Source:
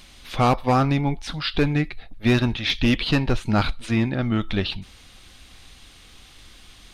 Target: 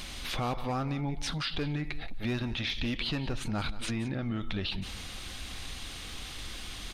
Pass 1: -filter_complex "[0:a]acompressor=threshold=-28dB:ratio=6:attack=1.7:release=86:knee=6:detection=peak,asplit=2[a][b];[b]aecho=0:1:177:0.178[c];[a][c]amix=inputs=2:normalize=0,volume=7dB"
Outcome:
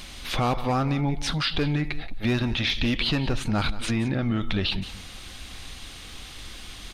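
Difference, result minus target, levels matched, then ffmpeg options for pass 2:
compressor: peak gain reduction -8 dB
-filter_complex "[0:a]acompressor=threshold=-37.5dB:ratio=6:attack=1.7:release=86:knee=6:detection=peak,asplit=2[a][b];[b]aecho=0:1:177:0.178[c];[a][c]amix=inputs=2:normalize=0,volume=7dB"

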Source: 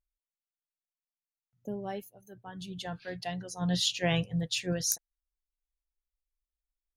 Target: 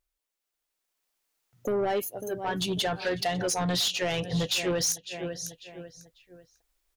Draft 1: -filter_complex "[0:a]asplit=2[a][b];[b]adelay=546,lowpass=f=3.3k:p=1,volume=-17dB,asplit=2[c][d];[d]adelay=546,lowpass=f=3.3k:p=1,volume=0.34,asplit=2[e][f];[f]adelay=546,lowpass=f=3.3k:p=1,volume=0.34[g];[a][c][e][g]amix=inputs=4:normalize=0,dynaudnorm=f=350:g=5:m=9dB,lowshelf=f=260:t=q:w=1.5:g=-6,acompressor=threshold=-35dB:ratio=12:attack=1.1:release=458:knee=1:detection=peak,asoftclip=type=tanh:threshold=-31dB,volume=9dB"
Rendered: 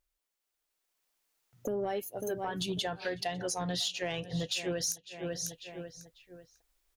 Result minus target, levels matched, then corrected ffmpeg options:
compressor: peak gain reduction +9 dB
-filter_complex "[0:a]asplit=2[a][b];[b]adelay=546,lowpass=f=3.3k:p=1,volume=-17dB,asplit=2[c][d];[d]adelay=546,lowpass=f=3.3k:p=1,volume=0.34,asplit=2[e][f];[f]adelay=546,lowpass=f=3.3k:p=1,volume=0.34[g];[a][c][e][g]amix=inputs=4:normalize=0,dynaudnorm=f=350:g=5:m=9dB,lowshelf=f=260:t=q:w=1.5:g=-6,acompressor=threshold=-25dB:ratio=12:attack=1.1:release=458:knee=1:detection=peak,asoftclip=type=tanh:threshold=-31dB,volume=9dB"

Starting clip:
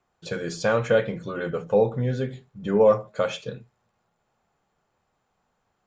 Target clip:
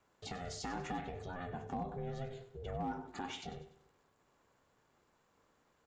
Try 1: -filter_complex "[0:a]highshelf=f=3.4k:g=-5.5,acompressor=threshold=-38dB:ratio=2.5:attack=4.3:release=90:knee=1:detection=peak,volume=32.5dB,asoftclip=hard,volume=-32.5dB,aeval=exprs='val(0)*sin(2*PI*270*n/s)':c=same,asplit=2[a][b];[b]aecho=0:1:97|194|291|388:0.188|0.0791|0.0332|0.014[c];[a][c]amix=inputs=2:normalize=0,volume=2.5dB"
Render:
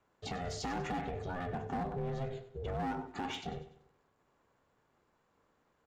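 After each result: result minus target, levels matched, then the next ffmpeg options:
compressor: peak gain reduction -6 dB; 8000 Hz band -3.0 dB
-filter_complex "[0:a]highshelf=f=3.4k:g=-5.5,acompressor=threshold=-47.5dB:ratio=2.5:attack=4.3:release=90:knee=1:detection=peak,volume=32.5dB,asoftclip=hard,volume=-32.5dB,aeval=exprs='val(0)*sin(2*PI*270*n/s)':c=same,asplit=2[a][b];[b]aecho=0:1:97|194|291|388:0.188|0.0791|0.0332|0.014[c];[a][c]amix=inputs=2:normalize=0,volume=2.5dB"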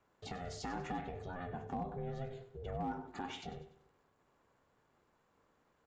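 8000 Hz band -4.0 dB
-filter_complex "[0:a]highshelf=f=3.4k:g=2,acompressor=threshold=-47.5dB:ratio=2.5:attack=4.3:release=90:knee=1:detection=peak,volume=32.5dB,asoftclip=hard,volume=-32.5dB,aeval=exprs='val(0)*sin(2*PI*270*n/s)':c=same,asplit=2[a][b];[b]aecho=0:1:97|194|291|388:0.188|0.0791|0.0332|0.014[c];[a][c]amix=inputs=2:normalize=0,volume=2.5dB"

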